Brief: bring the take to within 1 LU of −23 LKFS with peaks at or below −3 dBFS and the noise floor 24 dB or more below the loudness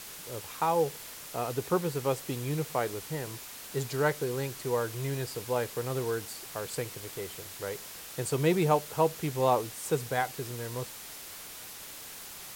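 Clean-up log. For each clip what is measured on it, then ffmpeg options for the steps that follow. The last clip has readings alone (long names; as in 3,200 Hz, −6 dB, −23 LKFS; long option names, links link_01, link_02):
background noise floor −45 dBFS; target noise floor −57 dBFS; integrated loudness −32.5 LKFS; sample peak −12.0 dBFS; target loudness −23.0 LKFS
→ -af "afftdn=noise_reduction=12:noise_floor=-45"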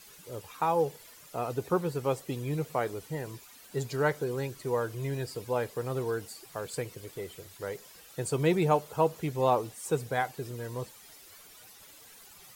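background noise floor −53 dBFS; target noise floor −56 dBFS
→ -af "afftdn=noise_reduction=6:noise_floor=-53"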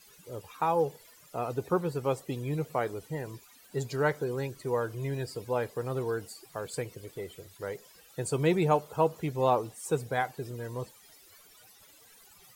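background noise floor −57 dBFS; integrated loudness −32.0 LKFS; sample peak −12.5 dBFS; target loudness −23.0 LKFS
→ -af "volume=9dB"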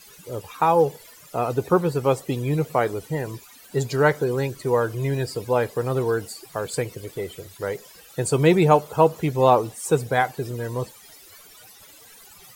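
integrated loudness −23.0 LKFS; sample peak −3.5 dBFS; background noise floor −48 dBFS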